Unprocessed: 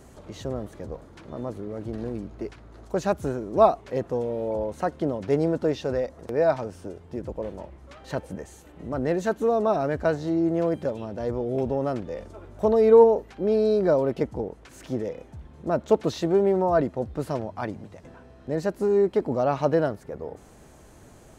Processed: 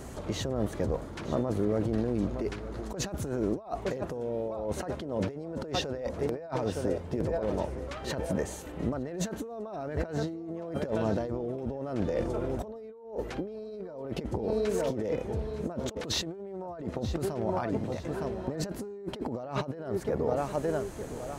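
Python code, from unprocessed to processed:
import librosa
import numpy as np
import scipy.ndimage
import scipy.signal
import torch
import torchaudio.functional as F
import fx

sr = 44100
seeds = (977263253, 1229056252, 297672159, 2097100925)

y = fx.echo_feedback(x, sr, ms=913, feedback_pct=34, wet_db=-15.0)
y = fx.over_compress(y, sr, threshold_db=-34.0, ratio=-1.0)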